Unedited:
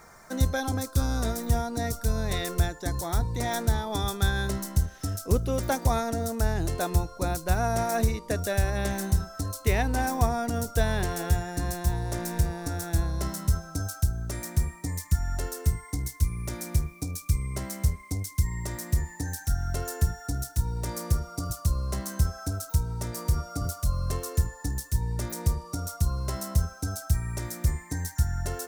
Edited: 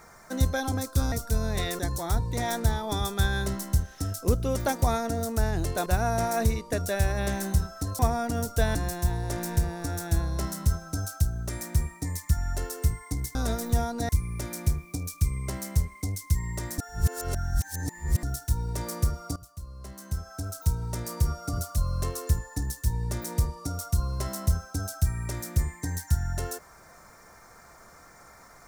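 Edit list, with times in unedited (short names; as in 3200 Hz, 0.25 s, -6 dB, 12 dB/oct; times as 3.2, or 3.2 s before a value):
1.12–1.86 move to 16.17
2.53–2.82 cut
6.89–7.44 cut
9.57–10.18 cut
10.94–11.57 cut
18.86–20.31 reverse
21.44–22.79 fade in quadratic, from -16.5 dB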